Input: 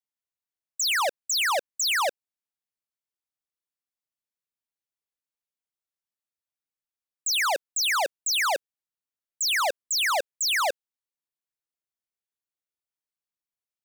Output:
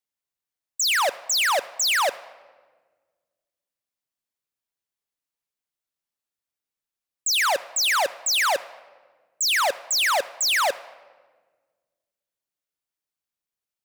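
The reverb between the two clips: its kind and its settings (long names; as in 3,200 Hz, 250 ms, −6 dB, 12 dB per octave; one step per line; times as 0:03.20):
rectangular room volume 1,400 cubic metres, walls mixed, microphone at 0.3 metres
level +3 dB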